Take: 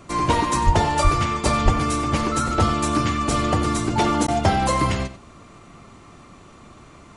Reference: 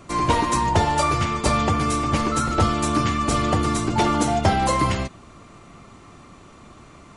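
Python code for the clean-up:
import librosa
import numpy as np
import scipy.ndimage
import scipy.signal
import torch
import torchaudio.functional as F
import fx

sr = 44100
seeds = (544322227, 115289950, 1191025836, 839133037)

y = fx.fix_deplosive(x, sr, at_s=(0.65, 1.03, 1.64))
y = fx.fix_interpolate(y, sr, at_s=(4.27,), length_ms=10.0)
y = fx.fix_echo_inverse(y, sr, delay_ms=92, level_db=-14.5)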